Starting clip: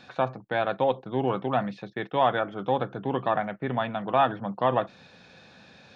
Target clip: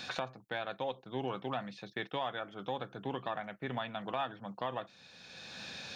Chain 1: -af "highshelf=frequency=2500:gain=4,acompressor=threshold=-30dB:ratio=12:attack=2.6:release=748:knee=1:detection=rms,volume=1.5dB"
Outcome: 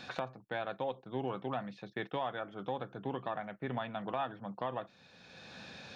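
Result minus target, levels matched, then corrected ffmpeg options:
4,000 Hz band −5.5 dB
-af "highshelf=frequency=2500:gain=14.5,acompressor=threshold=-30dB:ratio=12:attack=2.6:release=748:knee=1:detection=rms,volume=1.5dB"

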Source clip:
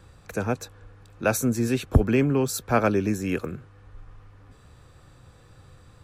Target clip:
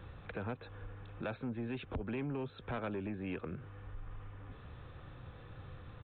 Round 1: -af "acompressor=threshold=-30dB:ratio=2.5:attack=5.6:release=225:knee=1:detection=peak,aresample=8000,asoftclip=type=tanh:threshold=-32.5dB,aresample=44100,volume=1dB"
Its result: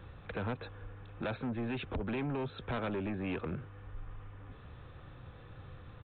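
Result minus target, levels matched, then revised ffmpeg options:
downward compressor: peak gain reduction −6.5 dB
-af "acompressor=threshold=-41dB:ratio=2.5:attack=5.6:release=225:knee=1:detection=peak,aresample=8000,asoftclip=type=tanh:threshold=-32.5dB,aresample=44100,volume=1dB"

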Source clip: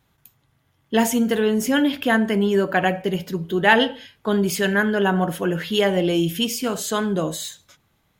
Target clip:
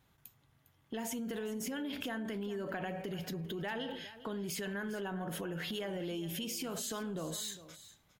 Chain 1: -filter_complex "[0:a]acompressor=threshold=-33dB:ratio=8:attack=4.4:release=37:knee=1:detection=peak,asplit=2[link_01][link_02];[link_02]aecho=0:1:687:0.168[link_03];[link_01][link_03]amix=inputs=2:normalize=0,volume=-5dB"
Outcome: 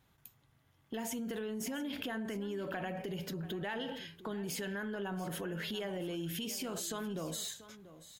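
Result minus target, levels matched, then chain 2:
echo 282 ms late
-filter_complex "[0:a]acompressor=threshold=-33dB:ratio=8:attack=4.4:release=37:knee=1:detection=peak,asplit=2[link_01][link_02];[link_02]aecho=0:1:405:0.168[link_03];[link_01][link_03]amix=inputs=2:normalize=0,volume=-5dB"

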